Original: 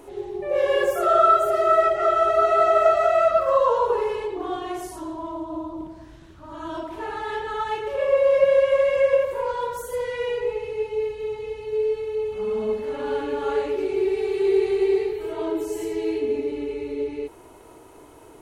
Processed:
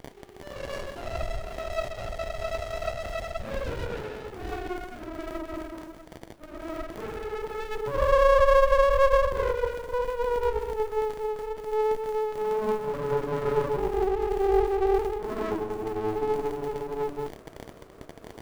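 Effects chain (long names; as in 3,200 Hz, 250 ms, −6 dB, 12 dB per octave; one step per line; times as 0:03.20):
band-pass filter sweep 2,600 Hz → 610 Hz, 0:03.28–0:05.24
surface crackle 57 per second −37 dBFS
on a send at −11 dB: RIAA equalisation recording + convolution reverb RT60 0.50 s, pre-delay 3 ms
on the sum: boost into a limiter +13 dB
windowed peak hold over 33 samples
level −7.5 dB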